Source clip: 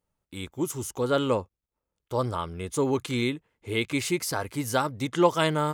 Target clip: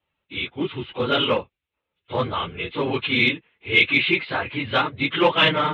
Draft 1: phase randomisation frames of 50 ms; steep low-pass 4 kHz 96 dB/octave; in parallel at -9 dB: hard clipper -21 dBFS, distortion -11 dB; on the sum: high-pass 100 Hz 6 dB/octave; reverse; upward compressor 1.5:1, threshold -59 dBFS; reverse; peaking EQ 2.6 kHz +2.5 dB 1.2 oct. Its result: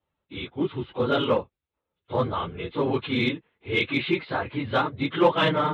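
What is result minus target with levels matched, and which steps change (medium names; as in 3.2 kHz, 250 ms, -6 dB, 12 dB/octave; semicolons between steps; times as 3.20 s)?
2 kHz band -4.5 dB
change: peaking EQ 2.6 kHz +14 dB 1.2 oct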